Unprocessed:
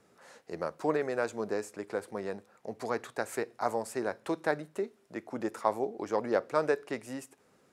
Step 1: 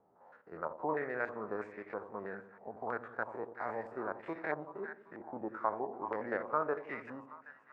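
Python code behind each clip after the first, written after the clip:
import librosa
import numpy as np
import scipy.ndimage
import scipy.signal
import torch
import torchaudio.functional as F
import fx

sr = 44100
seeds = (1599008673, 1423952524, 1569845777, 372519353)

y = fx.spec_steps(x, sr, hold_ms=50)
y = fx.echo_split(y, sr, split_hz=810.0, low_ms=87, high_ms=387, feedback_pct=52, wet_db=-11.0)
y = fx.filter_held_lowpass(y, sr, hz=3.1, low_hz=850.0, high_hz=2100.0)
y = y * 10.0 ** (-7.5 / 20.0)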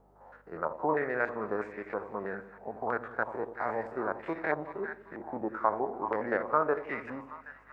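y = fx.add_hum(x, sr, base_hz=50, snr_db=33)
y = fx.echo_wet_highpass(y, sr, ms=212, feedback_pct=58, hz=2600.0, wet_db=-14)
y = y * 10.0 ** (6.0 / 20.0)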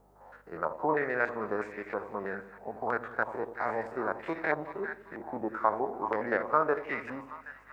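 y = fx.high_shelf(x, sr, hz=3000.0, db=9.0)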